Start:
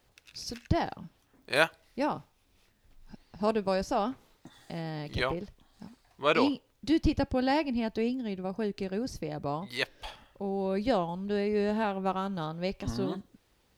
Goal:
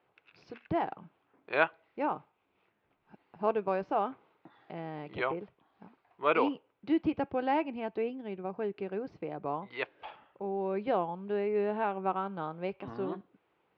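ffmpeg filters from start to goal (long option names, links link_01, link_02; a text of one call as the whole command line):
ffmpeg -i in.wav -af "highpass=240,equalizer=frequency=240:width_type=q:width=4:gain=-9,equalizer=frequency=570:width_type=q:width=4:gain=-4,equalizer=frequency=1800:width_type=q:width=4:gain=-7,lowpass=frequency=2400:width=0.5412,lowpass=frequency=2400:width=1.3066,volume=1dB" out.wav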